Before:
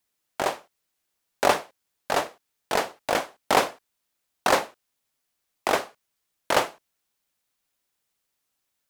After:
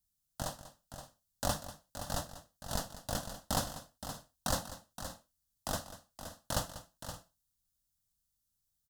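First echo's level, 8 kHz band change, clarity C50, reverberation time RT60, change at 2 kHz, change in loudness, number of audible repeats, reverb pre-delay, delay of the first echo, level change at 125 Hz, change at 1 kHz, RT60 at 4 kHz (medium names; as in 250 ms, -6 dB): -14.5 dB, -4.0 dB, no reverb, no reverb, -17.5 dB, -13.5 dB, 3, no reverb, 192 ms, +4.0 dB, -15.5 dB, no reverb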